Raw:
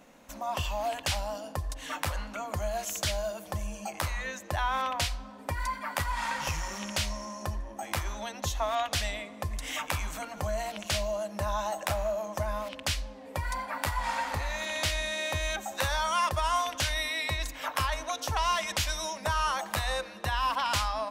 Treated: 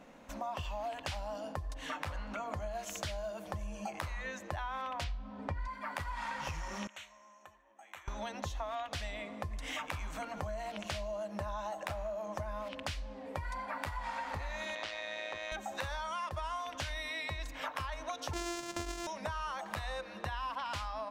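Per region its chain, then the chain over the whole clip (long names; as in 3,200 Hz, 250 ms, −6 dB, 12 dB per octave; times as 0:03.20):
0:01.90–0:02.75: high-shelf EQ 9,700 Hz −5.5 dB + hum removal 54.87 Hz, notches 15 + upward compression, threshold −35 dBFS
0:05.04–0:05.68: low-pass filter 5,300 Hz + low-shelf EQ 290 Hz +8.5 dB + hum removal 135 Hz, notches 30
0:06.87–0:08.08: moving average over 9 samples + first difference
0:14.75–0:15.52: band-pass filter 290–5,200 Hz + amplitude modulation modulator 110 Hz, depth 60%
0:18.33–0:19.07: samples sorted by size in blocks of 128 samples + parametric band 6,800 Hz +12 dB 1.1 octaves
whole clip: low-pass filter 3,000 Hz 6 dB per octave; downward compressor 6 to 1, threshold −37 dBFS; level +1 dB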